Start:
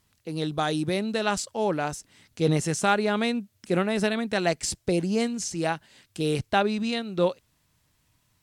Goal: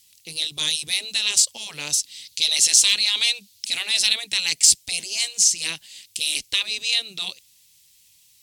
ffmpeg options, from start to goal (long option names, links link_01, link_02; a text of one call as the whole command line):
ffmpeg -i in.wav -filter_complex "[0:a]asettb=1/sr,asplit=3[link_01][link_02][link_03];[link_01]atrim=end=1.904[link_04];[link_02]atrim=start=1.9:end=4.13,asetpts=PTS-STARTPTS,afade=type=in:duration=0.004:curve=qsin,afade=type=out:start_time=2.226:duration=0.004:curve=qsin,equalizer=frequency=4200:width_type=o:width=0.89:gain=8[link_05];[link_03]atrim=start=4.126[link_06];[link_04][link_05]acrossfade=duration=0.004:curve1=hsin:curve2=qsin[link_07];[link_07][link_06]acrossfade=duration=0.004:curve1=qsin:curve2=hsin,afftfilt=real='re*lt(hypot(re,im),0.2)':imag='im*lt(hypot(re,im),0.2)':win_size=1024:overlap=0.75,aexciter=amount=9.9:drive=6.7:freq=2200,volume=-8dB" out.wav